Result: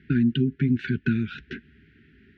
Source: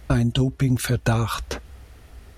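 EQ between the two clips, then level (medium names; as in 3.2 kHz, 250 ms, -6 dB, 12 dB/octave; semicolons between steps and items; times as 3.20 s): brick-wall FIR band-stop 430–1200 Hz; Butterworth band-stop 1.2 kHz, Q 2.1; cabinet simulation 150–2900 Hz, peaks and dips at 160 Hz +7 dB, 230 Hz +7 dB, 1.6 kHz +5 dB; -3.0 dB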